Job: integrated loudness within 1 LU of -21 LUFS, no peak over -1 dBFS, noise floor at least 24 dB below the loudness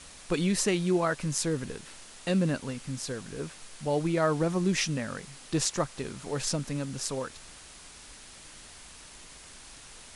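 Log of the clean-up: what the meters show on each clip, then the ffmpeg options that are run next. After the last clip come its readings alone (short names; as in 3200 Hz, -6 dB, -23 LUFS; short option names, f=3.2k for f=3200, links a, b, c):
noise floor -49 dBFS; noise floor target -54 dBFS; loudness -30.0 LUFS; peak -10.5 dBFS; loudness target -21.0 LUFS
-> -af "afftdn=nr=6:nf=-49"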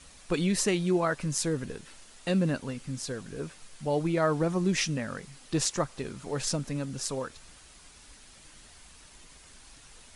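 noise floor -54 dBFS; loudness -30.0 LUFS; peak -11.0 dBFS; loudness target -21.0 LUFS
-> -af "volume=9dB"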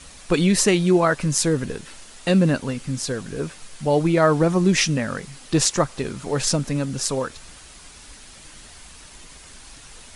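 loudness -21.0 LUFS; peak -2.0 dBFS; noise floor -45 dBFS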